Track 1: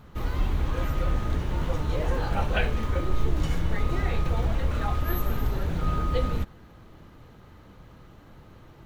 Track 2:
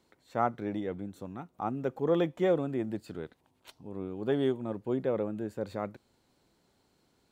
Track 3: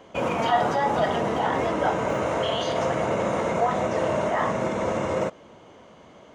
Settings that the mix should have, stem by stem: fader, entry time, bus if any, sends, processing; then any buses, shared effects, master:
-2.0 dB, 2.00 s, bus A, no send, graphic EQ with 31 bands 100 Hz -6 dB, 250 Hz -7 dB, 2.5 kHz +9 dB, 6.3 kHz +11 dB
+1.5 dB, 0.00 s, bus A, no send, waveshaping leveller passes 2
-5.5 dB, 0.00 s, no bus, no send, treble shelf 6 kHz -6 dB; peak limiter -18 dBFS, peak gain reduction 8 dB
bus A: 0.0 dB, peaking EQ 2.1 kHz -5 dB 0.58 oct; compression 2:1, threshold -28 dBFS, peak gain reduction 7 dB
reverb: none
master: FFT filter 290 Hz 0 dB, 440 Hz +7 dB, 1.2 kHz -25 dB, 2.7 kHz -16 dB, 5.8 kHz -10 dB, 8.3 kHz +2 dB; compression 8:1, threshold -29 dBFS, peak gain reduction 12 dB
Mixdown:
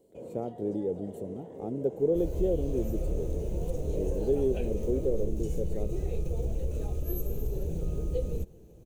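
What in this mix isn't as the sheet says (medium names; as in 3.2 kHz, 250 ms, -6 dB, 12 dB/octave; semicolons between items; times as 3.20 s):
stem 2: missing waveshaping leveller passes 2; stem 3 -5.5 dB -> -16.0 dB; master: missing compression 8:1, threshold -29 dBFS, peak gain reduction 12 dB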